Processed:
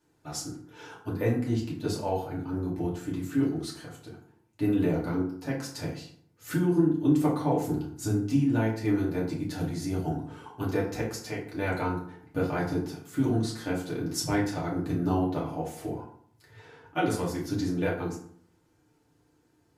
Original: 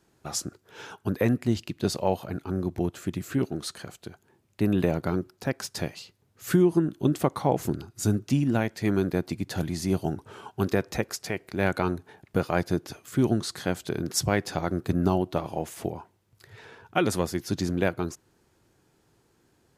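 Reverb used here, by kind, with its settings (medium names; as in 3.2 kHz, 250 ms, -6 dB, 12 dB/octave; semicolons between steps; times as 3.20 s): FDN reverb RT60 0.59 s, low-frequency decay 1.2×, high-frequency decay 0.6×, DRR -6 dB; trim -10.5 dB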